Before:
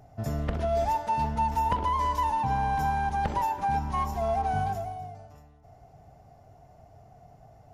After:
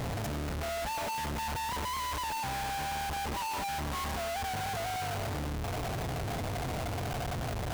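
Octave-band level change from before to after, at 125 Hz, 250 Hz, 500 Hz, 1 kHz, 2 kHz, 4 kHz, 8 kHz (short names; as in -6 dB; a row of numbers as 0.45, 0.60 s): -2.5 dB, -2.5 dB, -4.5 dB, -7.5 dB, +2.0 dB, +8.5 dB, n/a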